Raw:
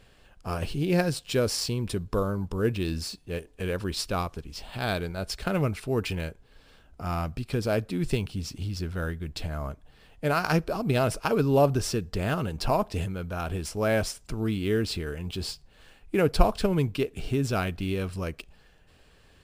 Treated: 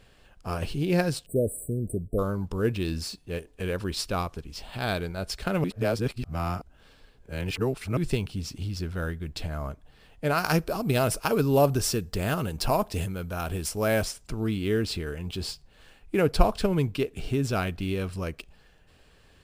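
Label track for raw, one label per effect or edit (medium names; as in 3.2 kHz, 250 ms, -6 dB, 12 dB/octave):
1.260000	2.190000	spectral selection erased 710–7700 Hz
5.640000	7.970000	reverse
10.380000	14.050000	treble shelf 7.7 kHz +11 dB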